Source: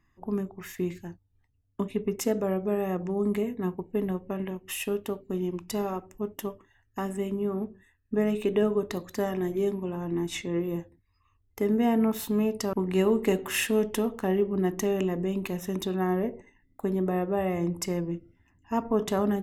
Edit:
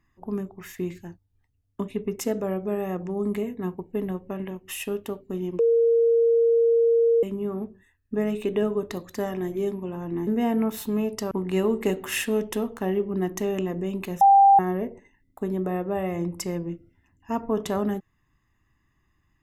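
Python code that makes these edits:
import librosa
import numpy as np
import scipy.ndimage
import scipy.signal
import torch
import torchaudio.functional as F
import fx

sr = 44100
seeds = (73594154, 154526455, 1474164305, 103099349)

y = fx.edit(x, sr, fx.bleep(start_s=5.59, length_s=1.64, hz=463.0, db=-16.0),
    fx.cut(start_s=10.27, length_s=1.42),
    fx.bleep(start_s=15.63, length_s=0.38, hz=791.0, db=-11.0), tone=tone)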